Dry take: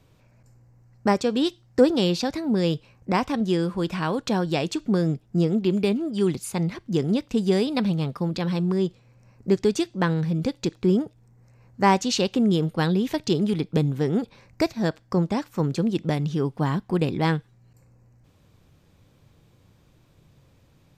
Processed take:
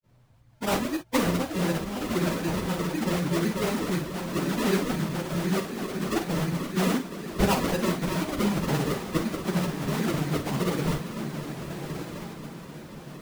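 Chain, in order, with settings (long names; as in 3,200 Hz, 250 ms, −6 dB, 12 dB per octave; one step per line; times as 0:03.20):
low-pass filter 6,700 Hz 12 dB per octave
granular cloud
feedback delay with all-pass diffusion 1,902 ms, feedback 48%, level −7.5 dB
sample-and-hold swept by an LFO 40×, swing 100% 2.5 Hz
reverb whose tail is shaped and stops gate 100 ms rising, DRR 7 dB
time stretch by phase vocoder 0.63×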